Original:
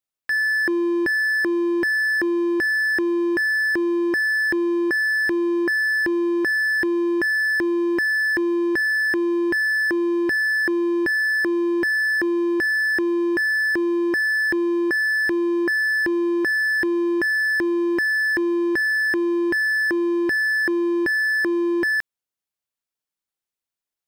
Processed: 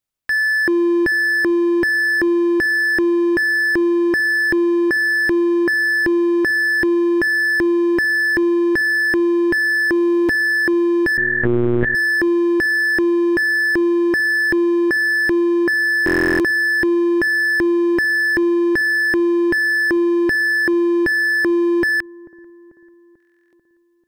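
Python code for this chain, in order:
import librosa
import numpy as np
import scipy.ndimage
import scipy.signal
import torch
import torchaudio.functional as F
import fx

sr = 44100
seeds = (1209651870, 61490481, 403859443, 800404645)

p1 = fx.low_shelf(x, sr, hz=150.0, db=11.0)
p2 = p1 + fx.echo_wet_lowpass(p1, sr, ms=441, feedback_pct=52, hz=800.0, wet_db=-21.0, dry=0)
p3 = fx.lpc_monotone(p2, sr, seeds[0], pitch_hz=120.0, order=8, at=(11.17, 11.95))
p4 = fx.buffer_glitch(p3, sr, at_s=(9.94, 16.05, 23.18), block=1024, repeats=14)
y = p4 * 10.0 ** (3.5 / 20.0)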